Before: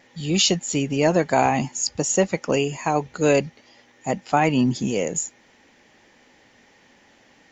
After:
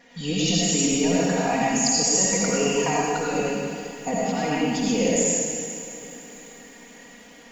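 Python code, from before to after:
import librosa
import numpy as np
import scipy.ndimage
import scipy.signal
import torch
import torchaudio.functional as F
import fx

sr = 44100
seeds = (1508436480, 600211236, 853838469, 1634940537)

p1 = x + 0.99 * np.pad(x, (int(4.2 * sr / 1000.0), 0))[:len(x)]
p2 = fx.over_compress(p1, sr, threshold_db=-21.0, ratio=-1.0)
p3 = p2 + fx.echo_diffused(p2, sr, ms=470, feedback_pct=54, wet_db=-16, dry=0)
p4 = fx.rev_freeverb(p3, sr, rt60_s=1.4, hf_ratio=1.0, predelay_ms=40, drr_db=-5.0)
p5 = fx.echo_crushed(p4, sr, ms=206, feedback_pct=55, bits=7, wet_db=-11.5)
y = p5 * librosa.db_to_amplitude(-6.0)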